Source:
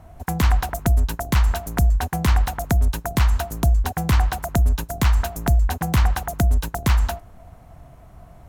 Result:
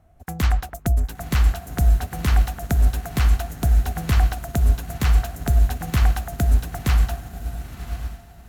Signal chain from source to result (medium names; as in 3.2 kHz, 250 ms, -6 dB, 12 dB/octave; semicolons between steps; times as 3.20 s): peaking EQ 970 Hz -9 dB 0.23 oct; echo that smears into a reverb 982 ms, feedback 42%, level -7 dB; upward expansion 1.5:1, over -35 dBFS